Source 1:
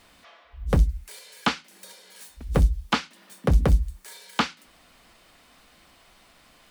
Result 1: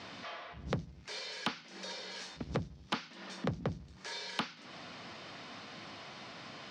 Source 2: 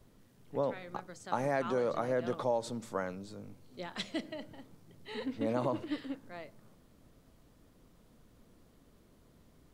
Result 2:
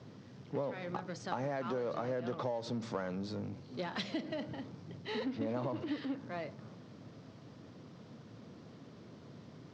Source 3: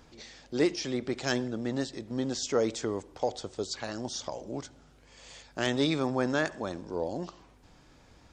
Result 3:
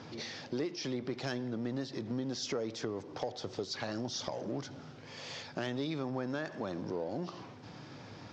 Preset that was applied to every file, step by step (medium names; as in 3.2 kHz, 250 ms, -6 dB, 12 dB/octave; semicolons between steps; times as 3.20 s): companding laws mixed up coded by mu; elliptic band-pass 110–5500 Hz, stop band 40 dB; bass shelf 260 Hz +5 dB; compression 5:1, threshold -35 dBFS; saturation -21.5 dBFS; trim +1.5 dB